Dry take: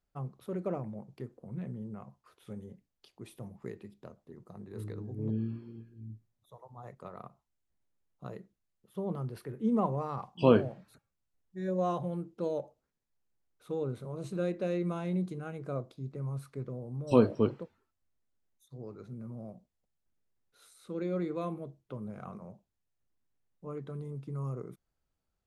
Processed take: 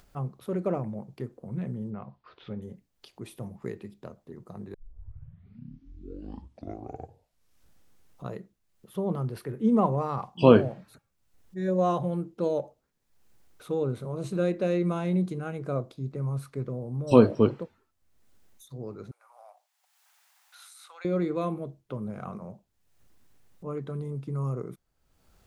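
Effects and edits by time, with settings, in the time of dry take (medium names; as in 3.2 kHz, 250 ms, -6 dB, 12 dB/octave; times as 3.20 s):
1.90–2.62 s: steep low-pass 4.6 kHz
4.74 s: tape start 3.57 s
19.11–21.05 s: elliptic high-pass 780 Hz, stop band 70 dB
whole clip: upward compressor, threshold -51 dBFS; trim +6 dB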